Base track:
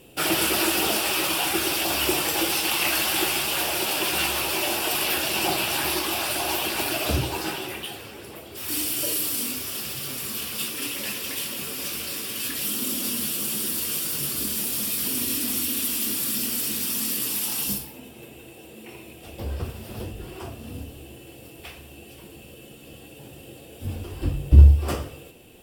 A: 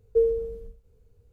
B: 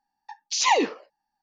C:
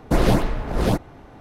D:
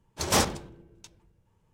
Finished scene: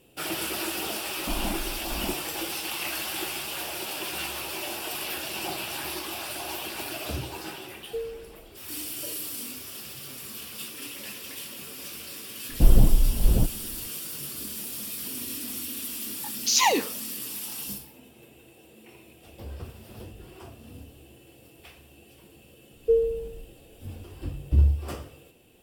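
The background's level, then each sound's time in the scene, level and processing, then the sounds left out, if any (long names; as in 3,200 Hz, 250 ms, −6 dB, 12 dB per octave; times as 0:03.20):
base track −8.5 dB
0:01.16: mix in C −11 dB + phaser with its sweep stopped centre 470 Hz, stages 6
0:07.78: mix in A −12 dB
0:12.49: mix in C −16 dB + spectral tilt −4.5 dB per octave
0:15.95: mix in B −2.5 dB + high-shelf EQ 5,100 Hz +11 dB
0:22.73: mix in A
not used: D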